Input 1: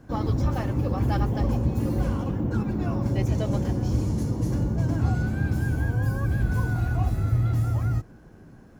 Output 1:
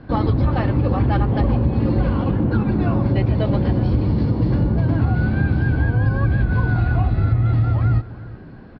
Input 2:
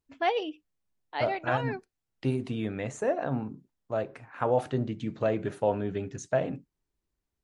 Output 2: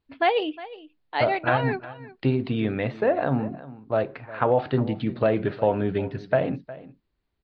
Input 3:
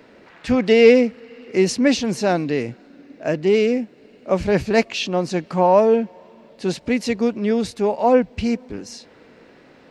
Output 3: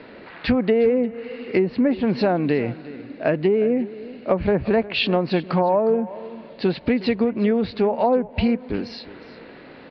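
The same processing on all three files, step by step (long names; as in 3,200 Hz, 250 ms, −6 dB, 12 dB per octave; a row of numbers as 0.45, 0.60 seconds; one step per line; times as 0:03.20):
elliptic low-pass filter 4,500 Hz, stop band 40 dB
treble cut that deepens with the level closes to 1,200 Hz, closed at −14.5 dBFS
downward compressor 6 to 1, threshold −23 dBFS
single-tap delay 360 ms −17.5 dB
normalise the peak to −6 dBFS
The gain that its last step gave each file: +10.0, +7.5, +7.0 decibels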